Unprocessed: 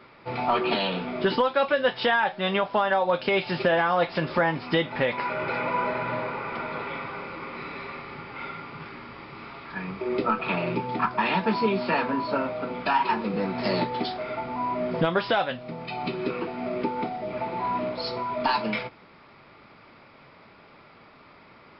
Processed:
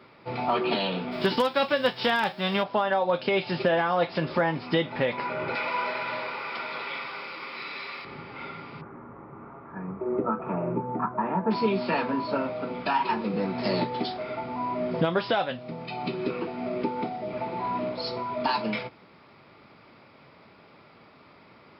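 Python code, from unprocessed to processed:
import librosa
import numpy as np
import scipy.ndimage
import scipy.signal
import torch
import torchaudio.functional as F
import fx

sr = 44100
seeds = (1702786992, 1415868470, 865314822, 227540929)

y = fx.envelope_flatten(x, sr, power=0.6, at=(1.11, 2.62), fade=0.02)
y = fx.tilt_eq(y, sr, slope=4.5, at=(5.55, 8.05))
y = fx.lowpass(y, sr, hz=1400.0, slope=24, at=(8.8, 11.5), fade=0.02)
y = scipy.signal.sosfilt(scipy.signal.butter(2, 68.0, 'highpass', fs=sr, output='sos'), y)
y = fx.peak_eq(y, sr, hz=1600.0, db=-3.5, octaves=2.0)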